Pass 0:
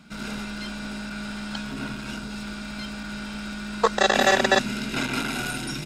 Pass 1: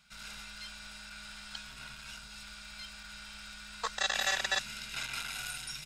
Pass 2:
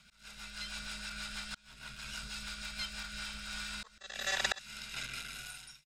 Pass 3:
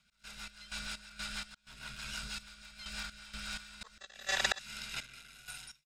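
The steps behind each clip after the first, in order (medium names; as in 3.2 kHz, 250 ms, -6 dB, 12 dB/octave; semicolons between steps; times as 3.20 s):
amplifier tone stack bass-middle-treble 10-0-10; trim -5 dB
fade out at the end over 1.22 s; slow attack 675 ms; rotary cabinet horn 6.3 Hz, later 0.9 Hz, at 2.75 s; trim +7.5 dB
trance gate ".x.x.x.xxx." 63 bpm -12 dB; trim +1.5 dB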